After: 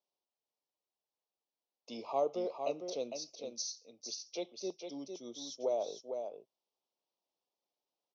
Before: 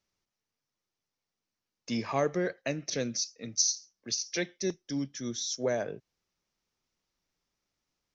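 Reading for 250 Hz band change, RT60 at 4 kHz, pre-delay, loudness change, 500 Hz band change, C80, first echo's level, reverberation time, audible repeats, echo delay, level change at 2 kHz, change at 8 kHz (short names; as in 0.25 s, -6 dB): -11.0 dB, none, none, -7.5 dB, -3.0 dB, none, -6.5 dB, none, 1, 0.455 s, -19.5 dB, n/a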